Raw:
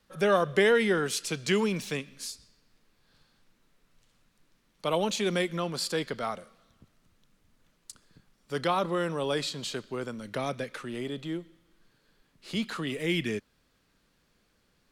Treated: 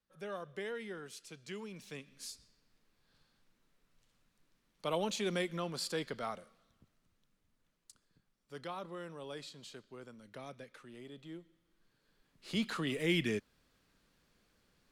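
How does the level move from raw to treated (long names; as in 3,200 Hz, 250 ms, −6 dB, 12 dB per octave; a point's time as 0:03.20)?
0:01.68 −19 dB
0:02.32 −7 dB
0:06.31 −7 dB
0:08.71 −16 dB
0:11.03 −16 dB
0:12.64 −3 dB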